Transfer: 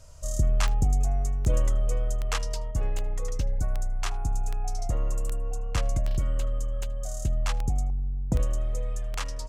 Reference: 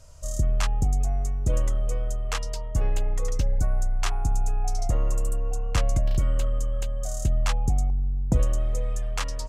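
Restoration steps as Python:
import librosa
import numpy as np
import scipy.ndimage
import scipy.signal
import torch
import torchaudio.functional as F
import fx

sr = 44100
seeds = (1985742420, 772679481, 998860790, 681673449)

y = fx.fix_declick_ar(x, sr, threshold=10.0)
y = fx.fix_echo_inverse(y, sr, delay_ms=79, level_db=-24.0)
y = fx.gain(y, sr, db=fx.steps((0.0, 0.0), (2.71, 3.5)))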